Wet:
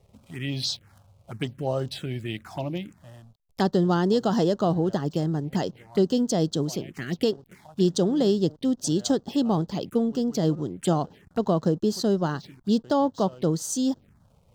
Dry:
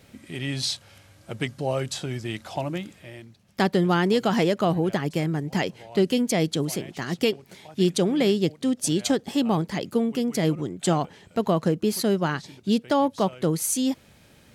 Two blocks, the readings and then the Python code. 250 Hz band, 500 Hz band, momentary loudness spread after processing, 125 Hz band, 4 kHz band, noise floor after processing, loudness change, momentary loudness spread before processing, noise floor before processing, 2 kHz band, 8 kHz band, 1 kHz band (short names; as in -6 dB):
0.0 dB, -0.5 dB, 11 LU, 0.0 dB, -3.0 dB, -61 dBFS, -1.0 dB, 10 LU, -55 dBFS, -8.0 dB, -4.0 dB, -2.0 dB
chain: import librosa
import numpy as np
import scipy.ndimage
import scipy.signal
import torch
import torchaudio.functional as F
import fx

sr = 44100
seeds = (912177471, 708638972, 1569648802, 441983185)

y = fx.backlash(x, sr, play_db=-46.0)
y = fx.env_phaser(y, sr, low_hz=250.0, high_hz=2300.0, full_db=-23.0)